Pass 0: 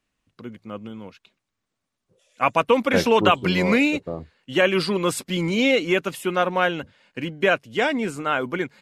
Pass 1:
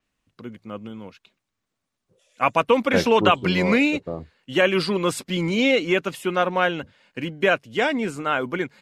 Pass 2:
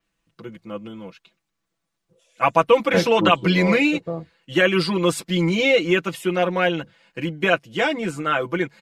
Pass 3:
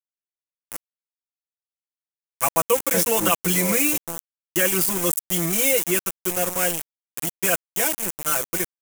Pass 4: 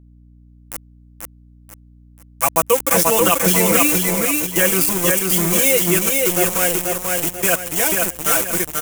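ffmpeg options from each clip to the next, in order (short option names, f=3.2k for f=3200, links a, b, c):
-af "adynamicequalizer=threshold=0.00708:dfrequency=7800:dqfactor=0.7:tfrequency=7800:tqfactor=0.7:attack=5:release=100:ratio=0.375:range=3:mode=cutabove:tftype=highshelf"
-af "aecho=1:1:6:0.88,volume=-1dB"
-af "aeval=exprs='val(0)*gte(abs(val(0)),0.0794)':c=same,aexciter=amount=5:drive=8.9:freq=6.2k,volume=-5.5dB"
-filter_complex "[0:a]asplit=2[a][b];[b]aecho=0:1:487|974|1461|1948|2435:0.708|0.255|0.0917|0.033|0.0119[c];[a][c]amix=inputs=2:normalize=0,aeval=exprs='val(0)+0.00355*(sin(2*PI*60*n/s)+sin(2*PI*2*60*n/s)/2+sin(2*PI*3*60*n/s)/3+sin(2*PI*4*60*n/s)/4+sin(2*PI*5*60*n/s)/5)':c=same,volume=4dB"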